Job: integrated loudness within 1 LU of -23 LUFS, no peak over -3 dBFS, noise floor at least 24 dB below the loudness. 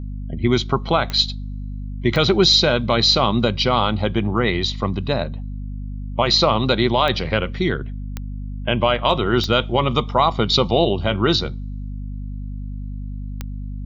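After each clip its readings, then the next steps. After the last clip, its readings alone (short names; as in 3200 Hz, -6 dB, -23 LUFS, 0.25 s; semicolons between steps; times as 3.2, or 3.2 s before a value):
clicks 7; hum 50 Hz; harmonics up to 250 Hz; hum level -26 dBFS; loudness -18.5 LUFS; peak -4.0 dBFS; loudness target -23.0 LUFS
-> de-click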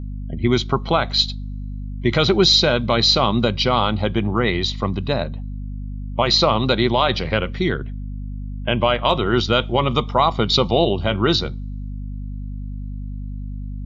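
clicks 0; hum 50 Hz; harmonics up to 250 Hz; hum level -26 dBFS
-> de-hum 50 Hz, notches 5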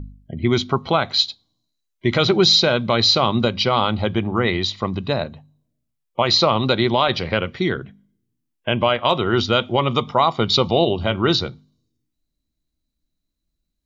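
hum none; loudness -19.0 LUFS; peak -4.5 dBFS; loudness target -23.0 LUFS
-> gain -4 dB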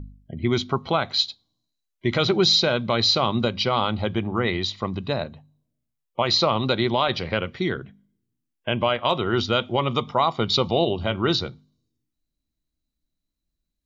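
loudness -23.0 LUFS; peak -8.5 dBFS; noise floor -81 dBFS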